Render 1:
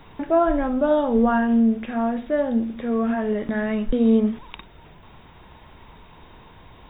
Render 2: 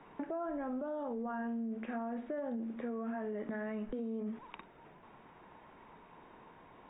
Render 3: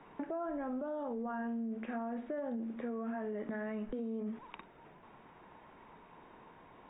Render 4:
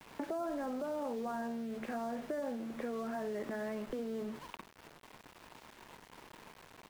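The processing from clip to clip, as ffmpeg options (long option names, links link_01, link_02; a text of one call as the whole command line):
ffmpeg -i in.wav -filter_complex "[0:a]acrossover=split=170 2500:gain=0.126 1 0.0708[link_01][link_02][link_03];[link_01][link_02][link_03]amix=inputs=3:normalize=0,alimiter=limit=-21dB:level=0:latency=1:release=39,acompressor=threshold=-29dB:ratio=6,volume=-6.5dB" out.wav
ffmpeg -i in.wav -af anull out.wav
ffmpeg -i in.wav -filter_complex "[0:a]asplit=4[link_01][link_02][link_03][link_04];[link_02]adelay=92,afreqshift=-74,volume=-21.5dB[link_05];[link_03]adelay=184,afreqshift=-148,volume=-30.6dB[link_06];[link_04]adelay=276,afreqshift=-222,volume=-39.7dB[link_07];[link_01][link_05][link_06][link_07]amix=inputs=4:normalize=0,acrossover=split=340|920[link_08][link_09][link_10];[link_08]acompressor=threshold=-50dB:ratio=4[link_11];[link_09]acompressor=threshold=-43dB:ratio=4[link_12];[link_10]acompressor=threshold=-52dB:ratio=4[link_13];[link_11][link_12][link_13]amix=inputs=3:normalize=0,aeval=exprs='val(0)*gte(abs(val(0)),0.00224)':channel_layout=same,volume=4.5dB" out.wav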